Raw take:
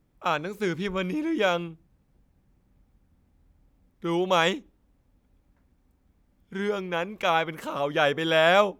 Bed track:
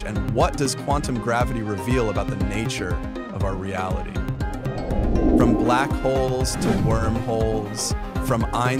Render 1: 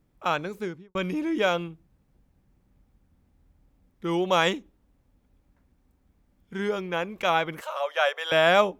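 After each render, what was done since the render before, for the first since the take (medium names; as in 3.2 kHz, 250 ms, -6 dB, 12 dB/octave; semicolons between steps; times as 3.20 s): 0.43–0.95 s: studio fade out; 7.61–8.32 s: elliptic high-pass 550 Hz, stop band 60 dB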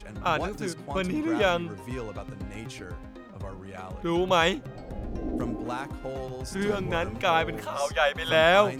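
add bed track -14 dB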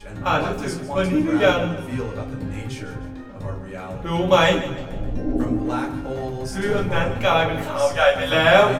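feedback delay 152 ms, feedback 43%, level -13.5 dB; simulated room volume 130 m³, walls furnished, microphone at 2.3 m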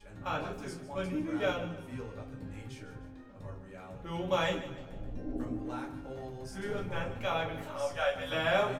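trim -14.5 dB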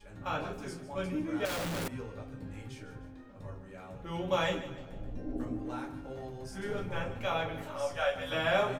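1.45–1.88 s: one-bit comparator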